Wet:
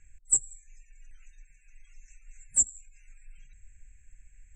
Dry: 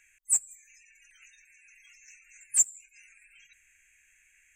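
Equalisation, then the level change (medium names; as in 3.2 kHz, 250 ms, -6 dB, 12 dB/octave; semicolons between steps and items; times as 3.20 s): resonant low-pass 7.7 kHz, resonance Q 16; tilt EQ -4.5 dB/octave; tilt shelf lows +7 dB, about 660 Hz; 0.0 dB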